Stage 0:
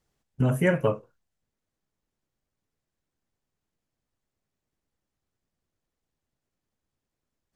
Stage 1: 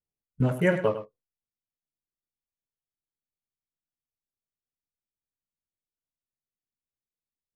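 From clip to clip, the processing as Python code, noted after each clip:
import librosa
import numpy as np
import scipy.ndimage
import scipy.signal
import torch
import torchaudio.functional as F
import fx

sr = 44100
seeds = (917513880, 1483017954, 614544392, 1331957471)

y = fx.wiener(x, sr, points=25)
y = fx.noise_reduce_blind(y, sr, reduce_db=19)
y = y + 10.0 ** (-11.5 / 20.0) * np.pad(y, (int(103 * sr / 1000.0), 0))[:len(y)]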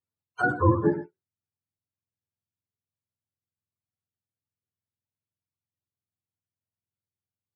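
y = fx.octave_mirror(x, sr, pivot_hz=430.0)
y = F.gain(torch.from_numpy(y), 3.0).numpy()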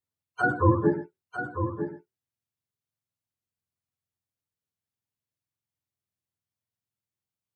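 y = x + 10.0 ** (-8.5 / 20.0) * np.pad(x, (int(949 * sr / 1000.0), 0))[:len(x)]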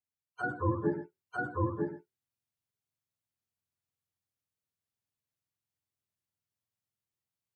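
y = fx.rider(x, sr, range_db=4, speed_s=0.5)
y = F.gain(torch.from_numpy(y), -6.0).numpy()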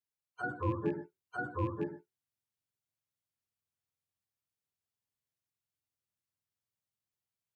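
y = fx.rattle_buzz(x, sr, strikes_db=-33.0, level_db=-39.0)
y = F.gain(torch.from_numpy(y), -3.0).numpy()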